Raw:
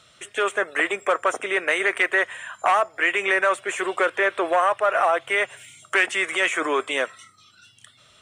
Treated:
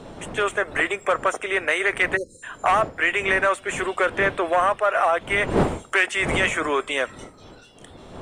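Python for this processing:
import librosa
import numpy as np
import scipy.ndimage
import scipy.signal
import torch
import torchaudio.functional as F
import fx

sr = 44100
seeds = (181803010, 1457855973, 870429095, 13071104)

y = fx.dmg_wind(x, sr, seeds[0], corner_hz=540.0, level_db=-33.0)
y = fx.spec_erase(y, sr, start_s=2.16, length_s=0.27, low_hz=580.0, high_hz=3900.0)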